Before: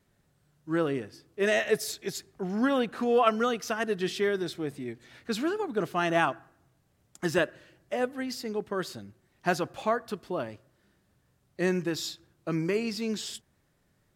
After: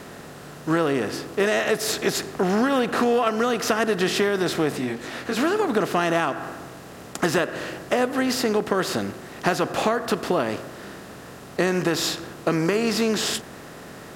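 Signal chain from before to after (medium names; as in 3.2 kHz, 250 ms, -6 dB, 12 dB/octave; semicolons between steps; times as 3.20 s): spectral levelling over time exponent 0.6; compression 10:1, threshold -26 dBFS, peak gain reduction 11 dB; 4.77–5.35 s: detune thickener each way 27 cents -> 44 cents; trim +8.5 dB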